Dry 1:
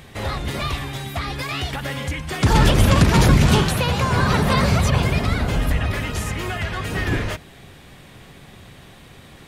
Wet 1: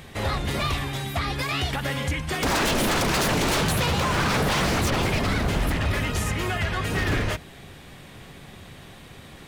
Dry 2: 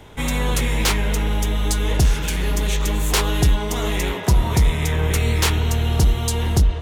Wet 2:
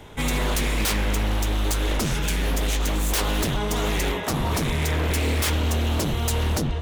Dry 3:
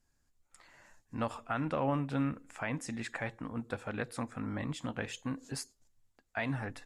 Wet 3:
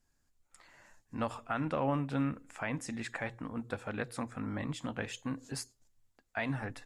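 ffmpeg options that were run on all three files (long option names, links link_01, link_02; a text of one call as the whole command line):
ffmpeg -i in.wav -af "aeval=exprs='0.133*(abs(mod(val(0)/0.133+3,4)-2)-1)':channel_layout=same,bandreject=frequency=60:width_type=h:width=6,bandreject=frequency=120:width_type=h:width=6" out.wav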